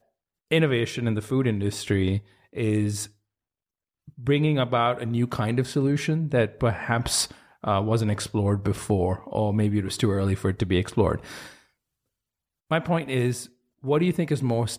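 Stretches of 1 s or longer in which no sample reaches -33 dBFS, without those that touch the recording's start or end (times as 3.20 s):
3.05–4.25 s
11.46–12.71 s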